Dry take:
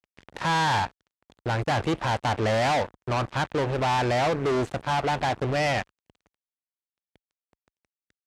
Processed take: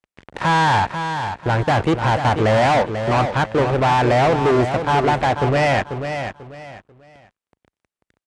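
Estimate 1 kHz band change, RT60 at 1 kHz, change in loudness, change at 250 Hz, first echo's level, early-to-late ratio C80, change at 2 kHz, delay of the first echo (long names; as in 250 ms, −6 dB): +8.5 dB, no reverb audible, +7.5 dB, +8.5 dB, −8.0 dB, no reverb audible, +7.0 dB, 491 ms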